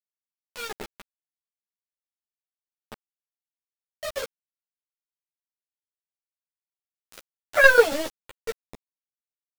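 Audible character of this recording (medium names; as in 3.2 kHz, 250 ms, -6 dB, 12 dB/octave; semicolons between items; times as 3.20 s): tremolo saw down 7.2 Hz, depth 70%; a quantiser's noise floor 6-bit, dither none; a shimmering, thickened sound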